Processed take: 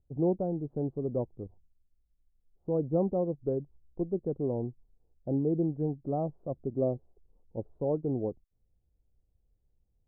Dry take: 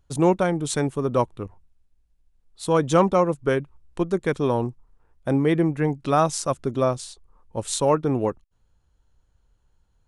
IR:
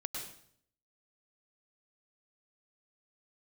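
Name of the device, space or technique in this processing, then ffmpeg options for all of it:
under water: -filter_complex "[0:a]lowpass=f=540:w=0.5412,lowpass=f=540:w=1.3066,equalizer=f=750:t=o:w=0.37:g=7,asettb=1/sr,asplit=3[s0][s1][s2];[s0]atrim=end=6.704[s3];[s1]atrim=start=6.7:end=7.63,asetpts=PTS-STARTPTS,afade=t=in:d=0.004:c=qsin,afade=t=out:st=0.926:d=0.004:c=qsin,adynamicequalizer=threshold=0.02:dfrequency=360:dqfactor=0.83:tfrequency=360:tqfactor=0.83:attack=5:release=100:ratio=0.375:range=2.5:mode=boostabove:tftype=bell[s4];[s2]atrim=start=7.626[s5];[s3][s4]acrossfade=d=0.004:c1=hsin:c2=qsin[s6];[s6][s5]acrossfade=d=0.004:c1=qsin:c2=hsin,volume=0.398"

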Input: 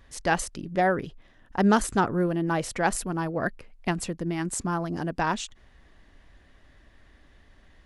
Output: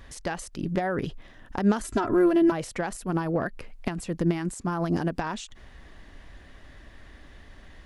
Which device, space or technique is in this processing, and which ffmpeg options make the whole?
de-esser from a sidechain: -filter_complex "[0:a]asplit=2[s0][s1];[s1]highpass=f=4900:p=1,apad=whole_len=346237[s2];[s0][s2]sidechaincompress=threshold=0.00447:ratio=4:attack=1.2:release=94,asettb=1/sr,asplit=3[s3][s4][s5];[s3]atrim=end=1.844[s6];[s4]atrim=start=1.84:end=2.52,asetpts=PTS-STARTPTS,afade=t=in:d=0.004:c=qsin,afade=t=out:st=0.676:d=0.004:c=qsin,aecho=1:1:3:0.94,atrim=end_sample=29988[s7];[s5]atrim=start=2.516[s8];[s6][s7]acrossfade=d=0.004:c1=hsin:c2=qsin[s9];[s9][s8]acrossfade=d=0.004:c1=qsin:c2=hsin,volume=2.37"

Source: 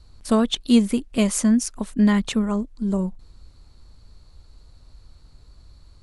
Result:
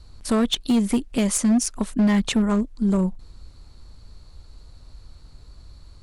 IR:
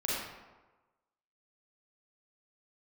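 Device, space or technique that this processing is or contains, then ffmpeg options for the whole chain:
limiter into clipper: -af "alimiter=limit=0.224:level=0:latency=1:release=152,asoftclip=type=hard:threshold=0.126,volume=1.5"

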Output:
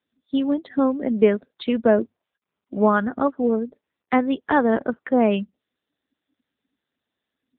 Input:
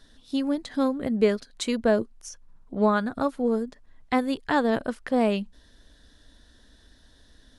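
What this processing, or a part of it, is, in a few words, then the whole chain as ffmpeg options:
mobile call with aggressive noise cancelling: -filter_complex "[0:a]bandreject=f=50:t=h:w=6,bandreject=f=100:t=h:w=6,asplit=3[s0][s1][s2];[s0]afade=t=out:st=1.12:d=0.02[s3];[s1]lowpass=6100,afade=t=in:st=1.12:d=0.02,afade=t=out:st=1.78:d=0.02[s4];[s2]afade=t=in:st=1.78:d=0.02[s5];[s3][s4][s5]amix=inputs=3:normalize=0,highpass=f=170:w=0.5412,highpass=f=170:w=1.3066,afftdn=nr=28:nf=-43,volume=1.78" -ar 8000 -c:a libopencore_amrnb -b:a 7950

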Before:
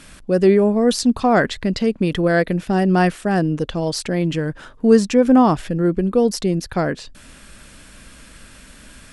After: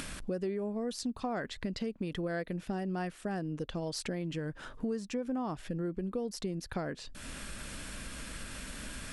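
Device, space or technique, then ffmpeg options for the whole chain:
upward and downward compression: -af "acompressor=mode=upward:threshold=0.0501:ratio=2.5,acompressor=threshold=0.0501:ratio=6,volume=0.447"

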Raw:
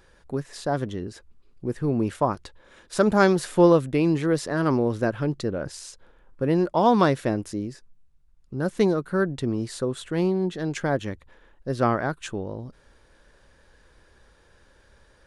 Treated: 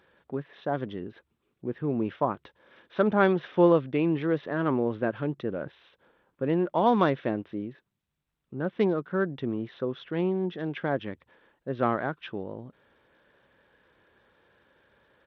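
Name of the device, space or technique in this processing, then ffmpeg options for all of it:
Bluetooth headset: -af "highpass=140,aresample=8000,aresample=44100,volume=0.668" -ar 32000 -c:a sbc -b:a 64k

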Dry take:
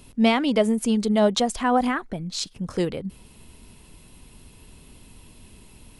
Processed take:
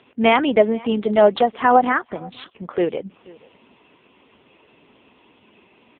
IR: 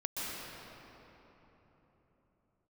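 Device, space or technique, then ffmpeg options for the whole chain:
satellite phone: -af "highpass=370,lowpass=3000,aecho=1:1:482:0.0668,volume=2.66" -ar 8000 -c:a libopencore_amrnb -b:a 5900

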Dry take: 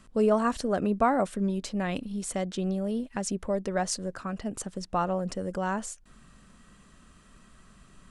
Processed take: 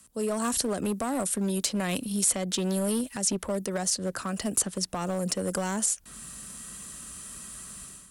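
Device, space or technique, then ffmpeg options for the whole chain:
FM broadcast chain: -filter_complex "[0:a]highpass=48,dynaudnorm=f=280:g=3:m=4.73,acrossover=split=160|380|4500[s0][s1][s2][s3];[s0]acompressor=threshold=0.02:ratio=4[s4];[s1]acompressor=threshold=0.1:ratio=4[s5];[s2]acompressor=threshold=0.0891:ratio=4[s6];[s3]acompressor=threshold=0.01:ratio=4[s7];[s4][s5][s6][s7]amix=inputs=4:normalize=0,aemphasis=mode=production:type=50fm,alimiter=limit=0.251:level=0:latency=1:release=147,asoftclip=type=hard:threshold=0.158,lowpass=f=15000:w=0.5412,lowpass=f=15000:w=1.3066,aemphasis=mode=production:type=50fm,volume=0.447"

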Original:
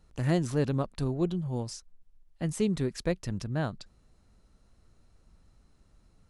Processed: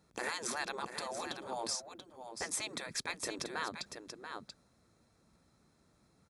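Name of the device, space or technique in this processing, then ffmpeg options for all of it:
PA system with an anti-feedback notch: -af "agate=range=0.447:threshold=0.00178:ratio=16:detection=peak,afftfilt=real='re*lt(hypot(re,im),0.0562)':imag='im*lt(hypot(re,im),0.0562)':win_size=1024:overlap=0.75,highpass=140,asuperstop=centerf=2900:order=4:qfactor=8,aecho=1:1:684:0.355,alimiter=level_in=2.24:limit=0.0631:level=0:latency=1:release=199,volume=0.447,volume=2.11"

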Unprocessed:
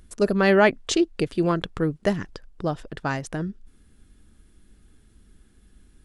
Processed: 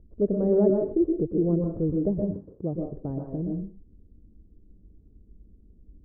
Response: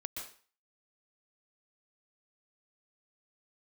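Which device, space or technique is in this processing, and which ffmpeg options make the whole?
next room: -filter_complex "[0:a]asettb=1/sr,asplit=3[s0][s1][s2];[s0]atrim=end=2.184[s3];[s1]atrim=start=2.18:end=2.74,asetpts=PTS-STARTPTS,afade=t=in:d=0.004:c=qsin,afade=t=out:st=0.556:d=0.004:c=qsin,highpass=80[s4];[s2]atrim=start=2.736[s5];[s3][s4]acrossfade=d=0.004:c1=hsin:c2=qsin[s6];[s6][s5]acrossfade=d=0.004:c1=qsin:c2=hsin,lowpass=f=510:w=0.5412,lowpass=f=510:w=1.3066[s7];[1:a]atrim=start_sample=2205[s8];[s7][s8]afir=irnorm=-1:irlink=0,volume=1.19"

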